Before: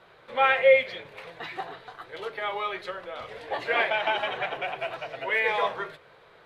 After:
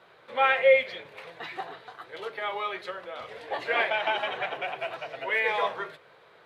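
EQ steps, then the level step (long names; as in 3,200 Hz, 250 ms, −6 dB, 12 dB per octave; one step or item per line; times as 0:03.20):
high-pass filter 150 Hz 6 dB per octave
−1.0 dB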